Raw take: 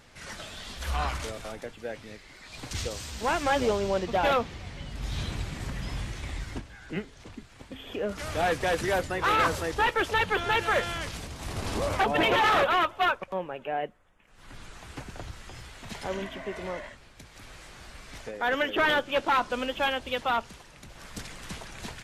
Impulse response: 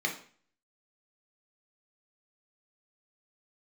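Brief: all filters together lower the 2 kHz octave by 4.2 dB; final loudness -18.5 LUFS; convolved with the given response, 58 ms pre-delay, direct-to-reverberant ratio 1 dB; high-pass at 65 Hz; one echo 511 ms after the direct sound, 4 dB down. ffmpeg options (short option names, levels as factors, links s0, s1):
-filter_complex "[0:a]highpass=65,equalizer=f=2000:t=o:g=-5.5,aecho=1:1:511:0.631,asplit=2[s0][s1];[1:a]atrim=start_sample=2205,adelay=58[s2];[s1][s2]afir=irnorm=-1:irlink=0,volume=0.376[s3];[s0][s3]amix=inputs=2:normalize=0,volume=2.66"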